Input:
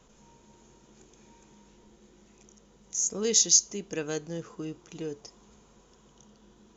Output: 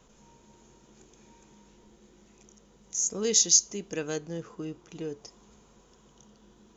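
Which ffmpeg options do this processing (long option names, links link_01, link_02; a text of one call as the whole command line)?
ffmpeg -i in.wav -filter_complex "[0:a]asettb=1/sr,asplit=3[link_01][link_02][link_03];[link_01]atrim=end=4.164[link_04];[link_02]atrim=start=4.16:end=5.21,asetpts=PTS-STARTPTS,afade=type=in:duration=0.004:curve=qsin,afade=type=out:start_time=1.046:duration=0.004:curve=qsin,highshelf=frequency=4900:gain=-5.5[link_05];[link_03]atrim=start=5.206[link_06];[link_04][link_05]acrossfade=duration=0.004:curve1=hsin:curve2=qsin[link_07];[link_07][link_06]acrossfade=duration=0.004:curve1=qsin:curve2=hsin" out.wav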